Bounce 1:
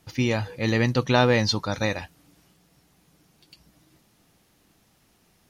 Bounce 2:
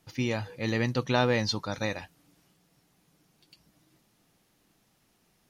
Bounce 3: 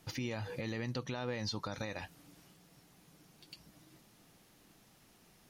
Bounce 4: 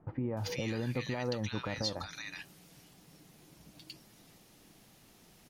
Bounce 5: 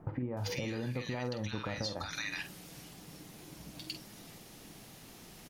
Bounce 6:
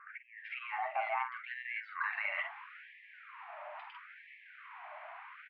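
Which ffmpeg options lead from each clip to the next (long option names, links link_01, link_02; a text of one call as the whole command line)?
ffmpeg -i in.wav -af "equalizer=frequency=69:width=3.7:gain=-12.5,volume=-5.5dB" out.wav
ffmpeg -i in.wav -af "acompressor=threshold=-33dB:ratio=6,alimiter=level_in=9dB:limit=-24dB:level=0:latency=1:release=147,volume=-9dB,volume=4.5dB" out.wav
ffmpeg -i in.wav -filter_complex "[0:a]acrossover=split=1300[link_01][link_02];[link_02]adelay=370[link_03];[link_01][link_03]amix=inputs=2:normalize=0,volume=4dB" out.wav
ffmpeg -i in.wav -filter_complex "[0:a]acompressor=threshold=-41dB:ratio=10,asplit=2[link_01][link_02];[link_02]adelay=48,volume=-10dB[link_03];[link_01][link_03]amix=inputs=2:normalize=0,volume=7.5dB" out.wav
ffmpeg -i in.wav -af "alimiter=level_in=8dB:limit=-24dB:level=0:latency=1:release=56,volume=-8dB,highpass=frequency=170:width_type=q:width=0.5412,highpass=frequency=170:width_type=q:width=1.307,lowpass=frequency=2000:width_type=q:width=0.5176,lowpass=frequency=2000:width_type=q:width=0.7071,lowpass=frequency=2000:width_type=q:width=1.932,afreqshift=290,afftfilt=real='re*gte(b*sr/1024,580*pow(1700/580,0.5+0.5*sin(2*PI*0.75*pts/sr)))':imag='im*gte(b*sr/1024,580*pow(1700/580,0.5+0.5*sin(2*PI*0.75*pts/sr)))':win_size=1024:overlap=0.75,volume=11.5dB" out.wav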